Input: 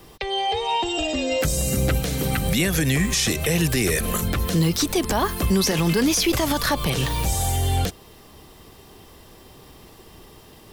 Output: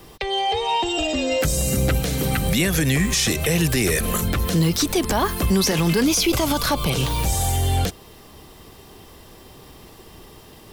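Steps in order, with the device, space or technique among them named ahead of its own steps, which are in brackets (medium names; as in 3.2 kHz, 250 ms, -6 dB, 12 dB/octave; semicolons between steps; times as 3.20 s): parallel distortion (in parallel at -11 dB: hard clipper -23.5 dBFS, distortion -8 dB); 6.04–7.19 s: on the sum: band-stop 1.8 kHz, Q 5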